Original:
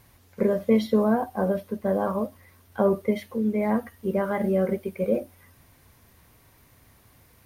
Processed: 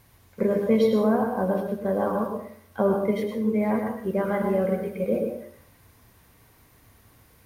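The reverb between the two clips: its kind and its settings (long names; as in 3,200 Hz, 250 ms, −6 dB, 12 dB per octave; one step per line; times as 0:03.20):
dense smooth reverb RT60 0.59 s, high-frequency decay 0.6×, pre-delay 90 ms, DRR 3 dB
level −1 dB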